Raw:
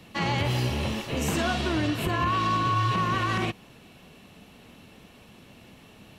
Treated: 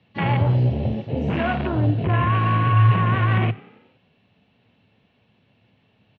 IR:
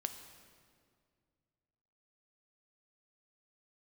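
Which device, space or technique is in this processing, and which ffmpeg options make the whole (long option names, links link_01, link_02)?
frequency-shifting delay pedal into a guitar cabinet: -filter_complex "[0:a]afwtdn=0.0355,asettb=1/sr,asplit=3[link_01][link_02][link_03];[link_01]atrim=end=1.564[link_04];[link_02]atrim=start=1.56:end=2.29,asetpts=PTS-STARTPTS,afade=type=in:duration=0.004:curve=qsin,afade=type=out:start_time=0.726:duration=0.004:curve=qsin,lowpass=5400[link_05];[link_03]atrim=start=2.286[link_06];[link_04][link_05]acrossfade=duration=0.004:curve1=hsin:curve2=qsin[link_07];[link_07][link_06]acrossfade=duration=0.004:curve1=qsin:curve2=hsin,asplit=6[link_08][link_09][link_10][link_11][link_12][link_13];[link_09]adelay=92,afreqshift=33,volume=-21dB[link_14];[link_10]adelay=184,afreqshift=66,volume=-25.4dB[link_15];[link_11]adelay=276,afreqshift=99,volume=-29.9dB[link_16];[link_12]adelay=368,afreqshift=132,volume=-34.3dB[link_17];[link_13]adelay=460,afreqshift=165,volume=-38.7dB[link_18];[link_08][link_14][link_15][link_16][link_17][link_18]amix=inputs=6:normalize=0,highpass=77,equalizer=frequency=110:width_type=q:width=4:gain=9,equalizer=frequency=330:width_type=q:width=4:gain=-5,equalizer=frequency=1200:width_type=q:width=4:gain=-5,lowpass=frequency=3900:width=0.5412,lowpass=frequency=3900:width=1.3066,volume=5.5dB"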